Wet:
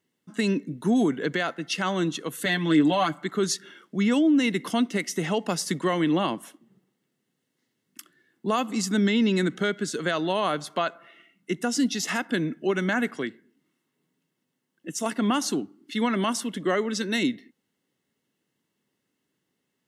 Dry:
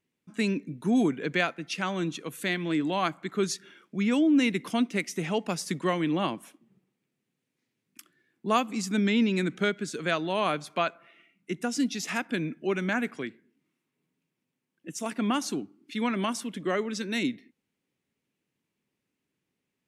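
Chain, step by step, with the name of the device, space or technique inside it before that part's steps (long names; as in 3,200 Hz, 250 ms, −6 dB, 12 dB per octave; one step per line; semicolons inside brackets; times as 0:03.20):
PA system with an anti-feedback notch (high-pass filter 140 Hz 6 dB per octave; Butterworth band-reject 2,400 Hz, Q 6.9; brickwall limiter −20.5 dBFS, peak gain reduction 8.5 dB)
0:02.45–0:03.24: comb filter 6.8 ms, depth 71%
level +5.5 dB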